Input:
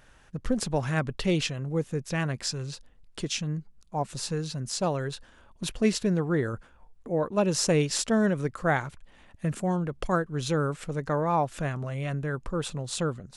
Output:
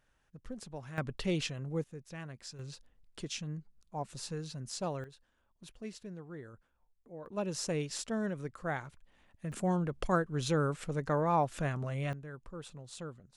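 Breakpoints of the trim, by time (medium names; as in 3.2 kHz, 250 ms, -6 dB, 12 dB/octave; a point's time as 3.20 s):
-17 dB
from 0.98 s -7 dB
from 1.84 s -16 dB
from 2.59 s -9 dB
from 5.04 s -20 dB
from 7.26 s -11 dB
from 9.52 s -3.5 dB
from 12.13 s -15 dB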